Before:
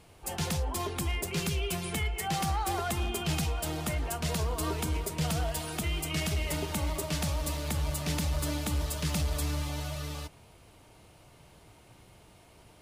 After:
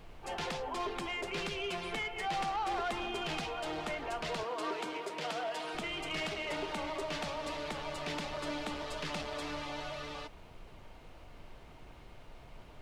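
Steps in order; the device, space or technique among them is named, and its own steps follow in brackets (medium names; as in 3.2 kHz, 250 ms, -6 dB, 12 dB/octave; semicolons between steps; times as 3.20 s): aircraft cabin announcement (band-pass 360–3400 Hz; saturation -31.5 dBFS, distortion -16 dB; brown noise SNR 12 dB); 4.43–5.75 s: high-pass 240 Hz 12 dB/octave; trim +2 dB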